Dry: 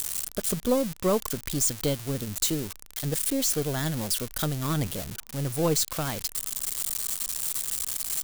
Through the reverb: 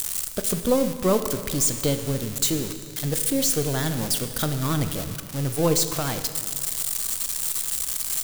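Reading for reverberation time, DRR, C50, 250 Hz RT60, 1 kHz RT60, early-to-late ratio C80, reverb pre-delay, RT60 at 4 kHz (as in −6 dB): 2.2 s, 8.5 dB, 9.5 dB, 2.4 s, 2.2 s, 10.5 dB, 15 ms, 1.9 s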